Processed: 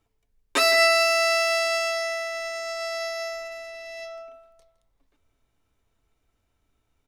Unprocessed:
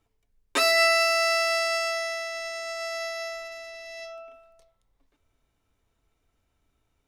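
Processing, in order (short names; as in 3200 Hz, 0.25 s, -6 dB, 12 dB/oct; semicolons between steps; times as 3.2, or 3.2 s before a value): in parallel at -11.5 dB: backlash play -37 dBFS; on the sum: outdoor echo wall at 28 m, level -15 dB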